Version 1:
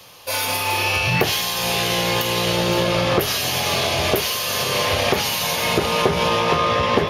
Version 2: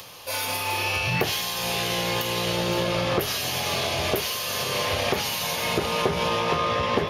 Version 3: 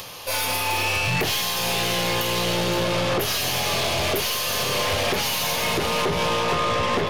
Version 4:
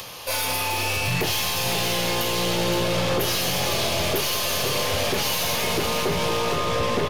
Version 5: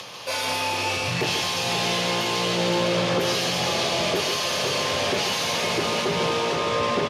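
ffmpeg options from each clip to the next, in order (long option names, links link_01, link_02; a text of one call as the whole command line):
ffmpeg -i in.wav -af "acompressor=mode=upward:threshold=-30dB:ratio=2.5,volume=-5.5dB" out.wav
ffmpeg -i in.wav -af "aeval=exprs='0.335*(cos(1*acos(clip(val(0)/0.335,-1,1)))-cos(1*PI/2))+0.0299*(cos(8*acos(clip(val(0)/0.335,-1,1)))-cos(8*PI/2))':channel_layout=same,asoftclip=type=tanh:threshold=-22.5dB,volume=5.5dB" out.wav
ffmpeg -i in.wav -filter_complex "[0:a]aecho=1:1:512|1024|1536|2048|2560:0.355|0.156|0.0687|0.0302|0.0133,acrossover=split=140|670|3700[link_01][link_02][link_03][link_04];[link_03]alimiter=limit=-22dB:level=0:latency=1[link_05];[link_01][link_02][link_05][link_04]amix=inputs=4:normalize=0" out.wav
ffmpeg -i in.wav -af "highpass=140,lowpass=6800,aecho=1:1:142:0.473" out.wav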